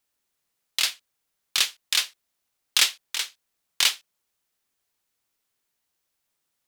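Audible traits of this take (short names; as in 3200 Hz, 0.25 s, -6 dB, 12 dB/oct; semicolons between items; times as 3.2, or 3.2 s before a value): noise floor -79 dBFS; spectral tilt +2.5 dB/oct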